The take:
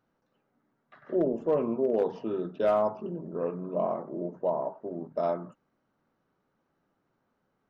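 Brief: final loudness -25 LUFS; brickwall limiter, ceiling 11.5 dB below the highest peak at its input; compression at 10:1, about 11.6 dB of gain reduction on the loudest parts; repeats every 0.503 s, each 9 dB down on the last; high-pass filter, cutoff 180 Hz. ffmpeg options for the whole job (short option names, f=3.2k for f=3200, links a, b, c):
-af "highpass=180,acompressor=threshold=-33dB:ratio=10,alimiter=level_in=10.5dB:limit=-24dB:level=0:latency=1,volume=-10.5dB,aecho=1:1:503|1006|1509|2012:0.355|0.124|0.0435|0.0152,volume=18.5dB"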